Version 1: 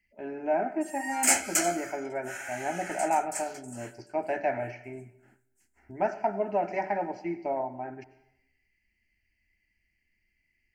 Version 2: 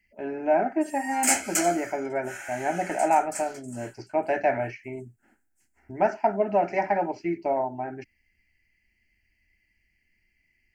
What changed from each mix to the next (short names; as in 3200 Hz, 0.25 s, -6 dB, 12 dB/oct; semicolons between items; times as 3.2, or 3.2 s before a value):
speech +8.0 dB; reverb: off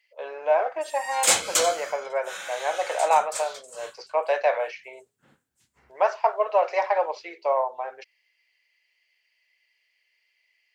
speech: add inverse Chebyshev high-pass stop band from 210 Hz, stop band 50 dB; master: remove fixed phaser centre 740 Hz, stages 8